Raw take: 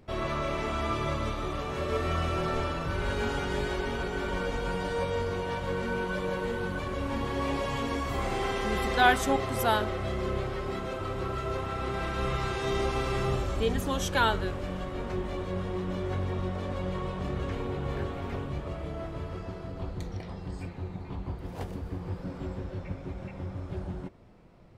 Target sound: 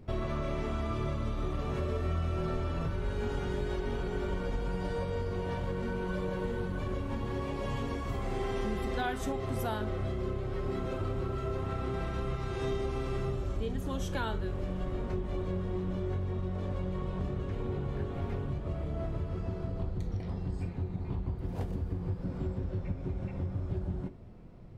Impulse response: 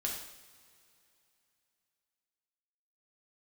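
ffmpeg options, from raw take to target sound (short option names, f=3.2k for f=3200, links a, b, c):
-filter_complex "[0:a]lowshelf=f=390:g=11,acompressor=threshold=-26dB:ratio=6,asplit=2[a][b];[1:a]atrim=start_sample=2205,atrim=end_sample=3087[c];[b][c]afir=irnorm=-1:irlink=0,volume=-7.5dB[d];[a][d]amix=inputs=2:normalize=0,volume=-6.5dB"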